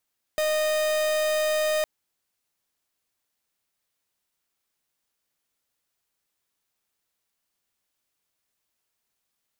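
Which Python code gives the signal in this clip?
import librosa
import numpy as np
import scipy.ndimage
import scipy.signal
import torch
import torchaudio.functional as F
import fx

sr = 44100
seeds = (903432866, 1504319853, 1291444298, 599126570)

y = fx.pulse(sr, length_s=1.46, hz=617.0, level_db=-24.0, duty_pct=44)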